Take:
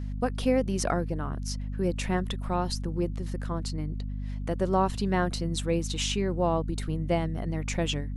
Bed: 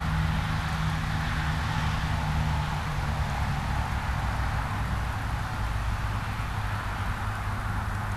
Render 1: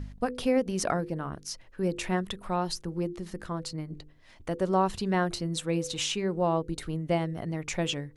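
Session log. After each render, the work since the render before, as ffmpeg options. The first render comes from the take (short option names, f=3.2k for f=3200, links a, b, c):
-af "bandreject=f=50:t=h:w=4,bandreject=f=100:t=h:w=4,bandreject=f=150:t=h:w=4,bandreject=f=200:t=h:w=4,bandreject=f=250:t=h:w=4,bandreject=f=300:t=h:w=4,bandreject=f=350:t=h:w=4,bandreject=f=400:t=h:w=4,bandreject=f=450:t=h:w=4,bandreject=f=500:t=h:w=4"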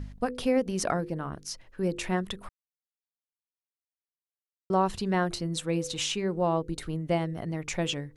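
-filter_complex "[0:a]asplit=3[a][b][c];[a]atrim=end=2.49,asetpts=PTS-STARTPTS,afade=t=out:st=2.486:d=0.004:c=hsin[d];[b]atrim=start=2.49:end=4.7,asetpts=PTS-STARTPTS,volume=0[e];[c]atrim=start=4.7,asetpts=PTS-STARTPTS,afade=t=in:d=0.004:c=hsin[f];[d][e][f]concat=n=3:v=0:a=1"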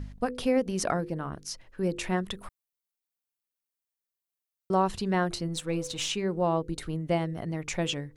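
-filter_complex "[0:a]asettb=1/sr,asplit=3[a][b][c];[a]atrim=end=2.364[d];[b]atrim=start=2.36:end=4.83,asetpts=PTS-STARTPTS,afade=t=in:d=0.004:c=qsin,afade=t=out:st=2.466:d=0.004:c=qsin,highshelf=f=9.7k:g=9.5[e];[c]atrim=start=4.826[f];[d][e]acrossfade=d=0.004:c1=hsin:c2=qsin[g];[g][f]acrossfade=d=0.004:c1=qsin:c2=hsin,asettb=1/sr,asplit=3[h][i][j];[h]atrim=end=5.484[k];[i]atrim=start=5.48:end=6.09,asetpts=PTS-STARTPTS,afade=t=in:d=0.004:c=qsin,afade=t=out:st=0.606:d=0.004:c=qsin,aeval=exprs='if(lt(val(0),0),0.708*val(0),val(0))':c=same[l];[j]atrim=start=6.086[m];[k][l]acrossfade=d=0.004:c1=hsin:c2=qsin[n];[n][m]acrossfade=d=0.004:c1=qsin:c2=hsin"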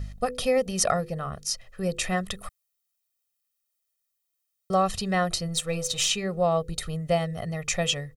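-af "highshelf=f=3k:g=8,aecho=1:1:1.6:0.8"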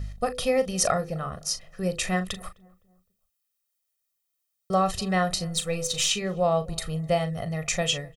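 -filter_complex "[0:a]asplit=2[a][b];[b]adelay=38,volume=-11dB[c];[a][c]amix=inputs=2:normalize=0,asplit=2[d][e];[e]adelay=257,lowpass=f=960:p=1,volume=-23dB,asplit=2[f][g];[g]adelay=257,lowpass=f=960:p=1,volume=0.47,asplit=2[h][i];[i]adelay=257,lowpass=f=960:p=1,volume=0.47[j];[d][f][h][j]amix=inputs=4:normalize=0"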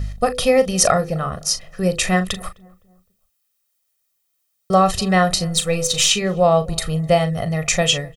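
-af "volume=8.5dB,alimiter=limit=-1dB:level=0:latency=1"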